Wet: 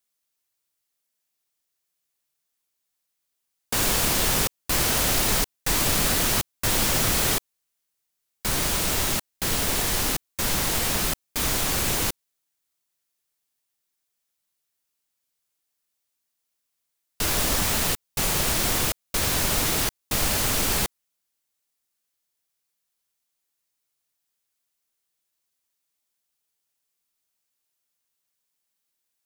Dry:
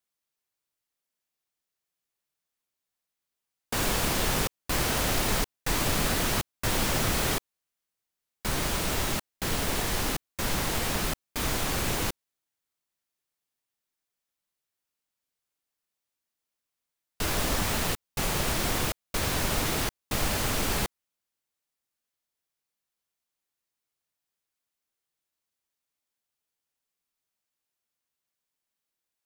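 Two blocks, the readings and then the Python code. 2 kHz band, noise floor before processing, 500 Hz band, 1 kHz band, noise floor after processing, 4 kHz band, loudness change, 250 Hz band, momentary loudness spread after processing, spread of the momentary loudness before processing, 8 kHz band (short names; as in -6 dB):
+3.0 dB, under -85 dBFS, +1.5 dB, +2.0 dB, -79 dBFS, +5.0 dB, +5.5 dB, +1.5 dB, 6 LU, 6 LU, +7.5 dB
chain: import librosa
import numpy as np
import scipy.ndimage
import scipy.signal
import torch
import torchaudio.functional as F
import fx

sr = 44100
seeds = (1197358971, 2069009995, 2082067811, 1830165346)

y = fx.high_shelf(x, sr, hz=3700.0, db=7.0)
y = y * 10.0 ** (1.5 / 20.0)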